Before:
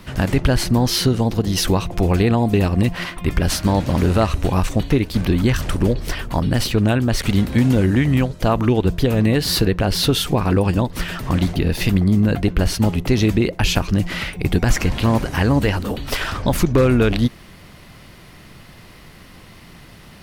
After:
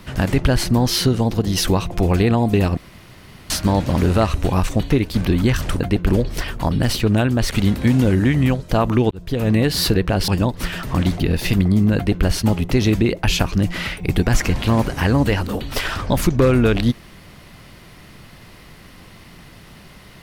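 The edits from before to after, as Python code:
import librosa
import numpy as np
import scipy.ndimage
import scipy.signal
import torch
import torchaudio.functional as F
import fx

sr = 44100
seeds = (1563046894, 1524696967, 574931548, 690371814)

y = fx.edit(x, sr, fx.room_tone_fill(start_s=2.77, length_s=0.73),
    fx.fade_in_span(start_s=8.82, length_s=0.4),
    fx.cut(start_s=9.99, length_s=0.65),
    fx.duplicate(start_s=12.32, length_s=0.29, to_s=5.8), tone=tone)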